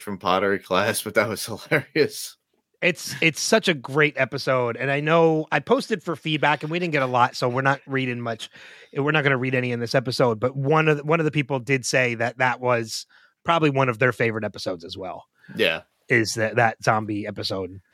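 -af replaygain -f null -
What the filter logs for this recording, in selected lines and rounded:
track_gain = +1.8 dB
track_peak = 0.453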